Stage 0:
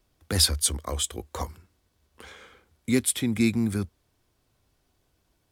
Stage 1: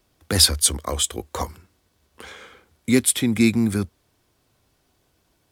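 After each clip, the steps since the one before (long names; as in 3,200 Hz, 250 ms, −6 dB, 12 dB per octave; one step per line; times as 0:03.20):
low-shelf EQ 62 Hz −9.5 dB
level +6 dB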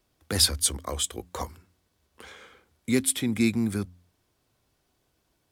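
hum removal 89.15 Hz, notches 3
level −6 dB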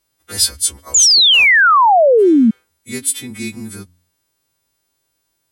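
every partial snapped to a pitch grid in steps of 2 semitones
sound drawn into the spectrogram fall, 0:00.94–0:02.51, 210–7,300 Hz −7 dBFS
level −2.5 dB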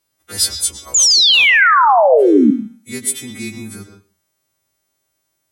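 high-pass filter 63 Hz
convolution reverb RT60 0.35 s, pre-delay 106 ms, DRR 6 dB
level −1.5 dB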